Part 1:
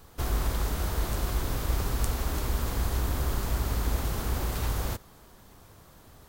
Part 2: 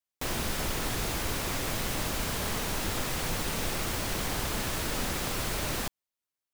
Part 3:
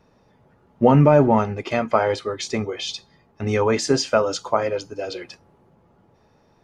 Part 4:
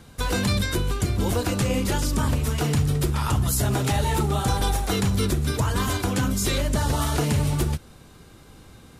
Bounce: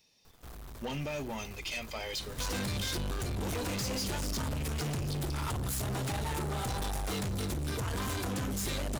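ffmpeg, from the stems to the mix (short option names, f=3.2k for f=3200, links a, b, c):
-filter_complex "[0:a]acrusher=bits=8:dc=4:mix=0:aa=0.000001,adelay=250,volume=-5dB[a];[1:a]adelay=1950,volume=-12.5dB[b];[2:a]aexciter=amount=9.6:drive=7.9:freq=2.2k,volume=-19dB[c];[3:a]adelay=2200,volume=2dB[d];[c][d]amix=inputs=2:normalize=0,acompressor=threshold=-23dB:ratio=2.5,volume=0dB[e];[a][b]amix=inputs=2:normalize=0,asoftclip=type=tanh:threshold=-38.5dB,alimiter=level_in=19.5dB:limit=-24dB:level=0:latency=1,volume=-19.5dB,volume=0dB[f];[e][f]amix=inputs=2:normalize=0,asoftclip=type=tanh:threshold=-32dB"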